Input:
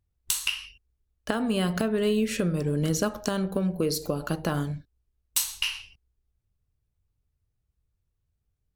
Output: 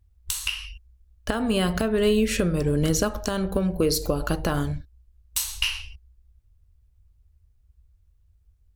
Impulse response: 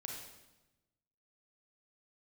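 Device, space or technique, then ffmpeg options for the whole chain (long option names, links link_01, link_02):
car stereo with a boomy subwoofer: -af "lowshelf=frequency=100:width_type=q:width=1.5:gain=11.5,alimiter=limit=-15.5dB:level=0:latency=1:release=254,volume=5dB"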